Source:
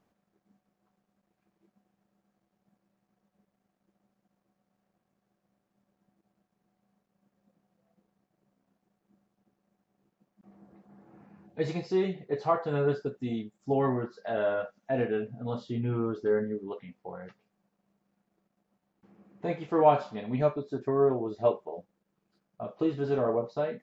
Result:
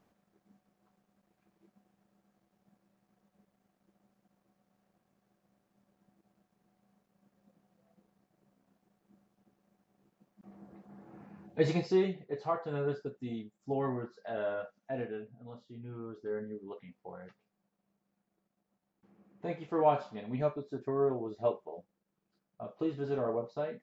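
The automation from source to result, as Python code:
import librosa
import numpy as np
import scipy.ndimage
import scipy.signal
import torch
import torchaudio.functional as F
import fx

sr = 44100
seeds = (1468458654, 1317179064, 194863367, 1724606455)

y = fx.gain(x, sr, db=fx.line((11.82, 2.5), (12.29, -6.5), (14.81, -6.5), (15.66, -17.0), (16.86, -5.5)))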